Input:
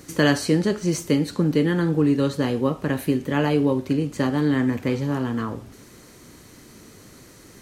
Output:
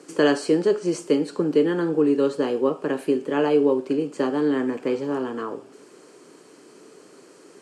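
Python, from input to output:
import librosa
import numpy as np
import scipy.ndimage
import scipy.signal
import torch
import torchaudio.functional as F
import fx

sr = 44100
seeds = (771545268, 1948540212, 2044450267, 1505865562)

y = fx.cabinet(x, sr, low_hz=210.0, low_slope=24, high_hz=8600.0, hz=(220.0, 420.0, 2000.0, 3800.0, 6100.0), db=(-9, 7, -8, -9, -8))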